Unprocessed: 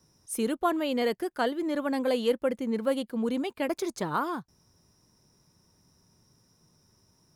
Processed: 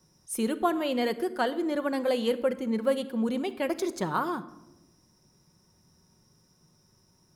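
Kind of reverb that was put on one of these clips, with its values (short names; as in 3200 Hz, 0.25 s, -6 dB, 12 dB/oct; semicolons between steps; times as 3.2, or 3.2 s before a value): shoebox room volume 3900 m³, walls furnished, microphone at 1 m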